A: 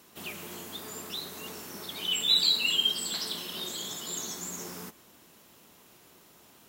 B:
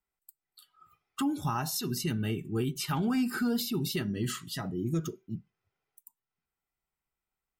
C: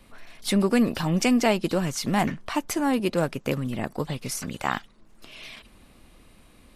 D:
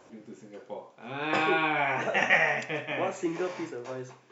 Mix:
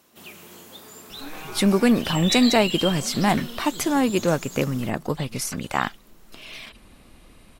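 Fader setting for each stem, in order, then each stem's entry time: -3.0 dB, -12.5 dB, +3.0 dB, -14.5 dB; 0.00 s, 0.00 s, 1.10 s, 0.00 s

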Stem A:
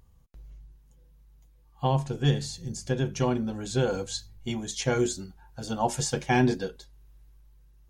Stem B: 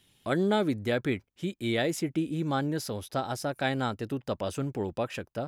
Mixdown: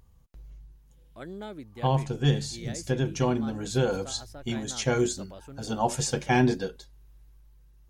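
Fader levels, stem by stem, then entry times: +0.5 dB, -14.0 dB; 0.00 s, 0.90 s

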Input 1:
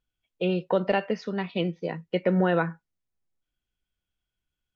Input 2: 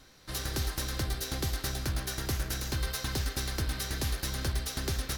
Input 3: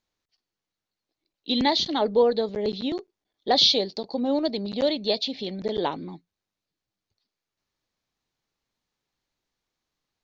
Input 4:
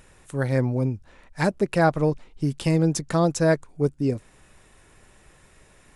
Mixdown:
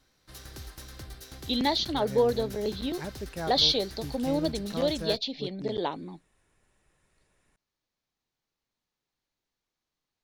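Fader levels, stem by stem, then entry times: mute, -11.0 dB, -4.0 dB, -16.0 dB; mute, 0.00 s, 0.00 s, 1.60 s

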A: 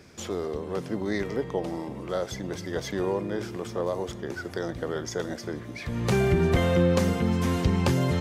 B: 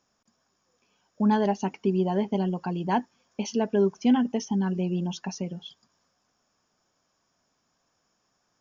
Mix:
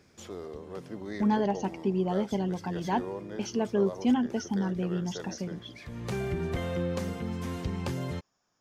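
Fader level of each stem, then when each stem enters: -9.5 dB, -3.5 dB; 0.00 s, 0.00 s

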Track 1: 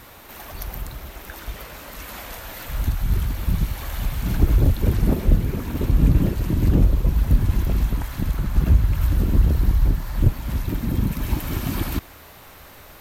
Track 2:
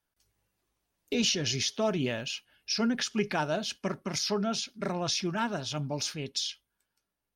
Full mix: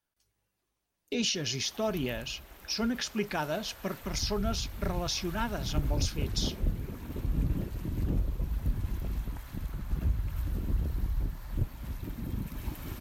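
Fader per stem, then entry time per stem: -13.5 dB, -2.5 dB; 1.35 s, 0.00 s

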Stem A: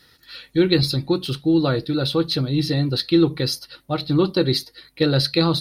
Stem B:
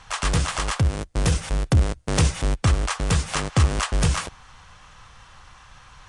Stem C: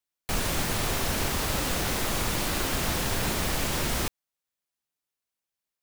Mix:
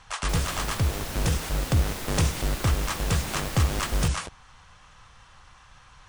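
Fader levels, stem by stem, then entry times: mute, -4.5 dB, -6.5 dB; mute, 0.00 s, 0.00 s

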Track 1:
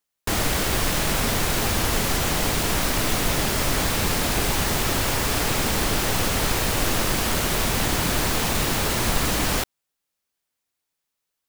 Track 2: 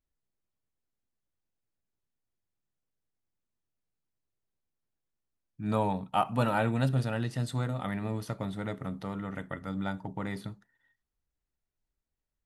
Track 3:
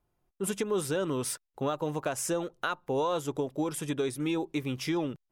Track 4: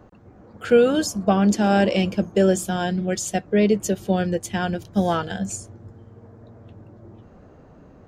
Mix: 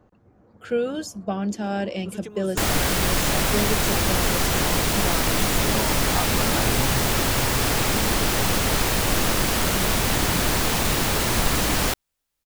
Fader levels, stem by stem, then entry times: +1.0 dB, -1.5 dB, -7.0 dB, -8.5 dB; 2.30 s, 0.00 s, 1.65 s, 0.00 s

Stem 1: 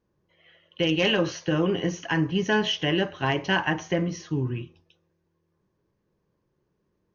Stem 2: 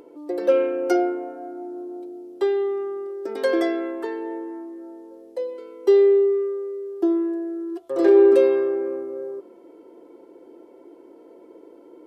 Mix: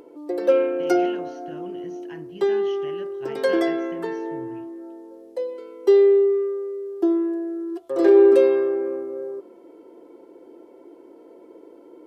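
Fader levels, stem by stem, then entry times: -18.0 dB, +0.5 dB; 0.00 s, 0.00 s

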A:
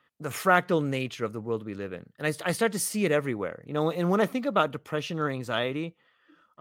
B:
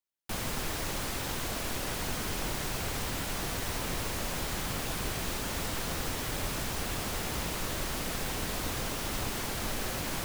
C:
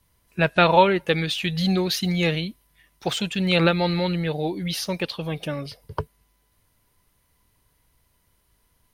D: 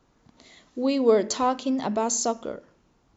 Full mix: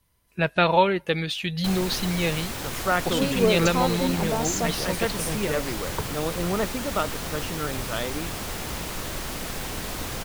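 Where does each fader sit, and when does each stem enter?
-2.5 dB, +2.0 dB, -3.0 dB, -2.5 dB; 2.40 s, 1.35 s, 0.00 s, 2.35 s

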